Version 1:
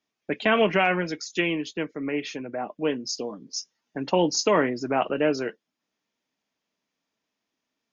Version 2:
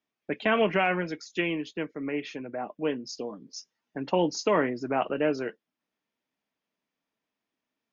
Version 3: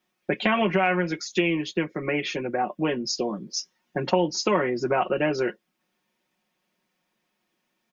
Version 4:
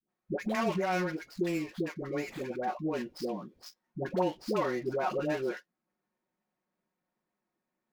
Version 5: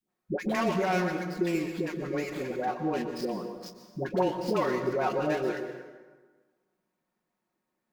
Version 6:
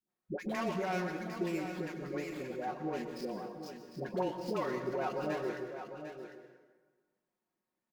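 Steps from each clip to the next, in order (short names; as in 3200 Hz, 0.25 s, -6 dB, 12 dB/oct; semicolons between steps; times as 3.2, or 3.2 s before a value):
tone controls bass 0 dB, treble -8 dB; gain -3 dB
comb 5.5 ms, depth 87%; compressor 3:1, threshold -30 dBFS, peak gain reduction 12 dB; gain +8.5 dB
median filter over 15 samples; dispersion highs, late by 94 ms, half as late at 540 Hz; gain -7 dB
reverb RT60 1.4 s, pre-delay 0.109 s, DRR 7 dB; gain +2.5 dB
echo 0.75 s -9.5 dB; gain -7.5 dB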